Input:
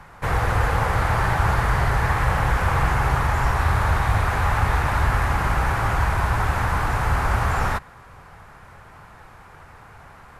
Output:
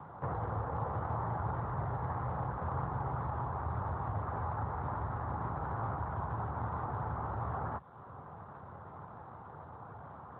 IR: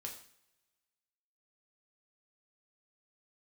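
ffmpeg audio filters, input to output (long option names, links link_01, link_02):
-af "lowpass=frequency=1200:width=0.5412,lowpass=frequency=1200:width=1.3066,acompressor=threshold=-40dB:ratio=2" -ar 8000 -c:a libopencore_amrnb -b:a 12200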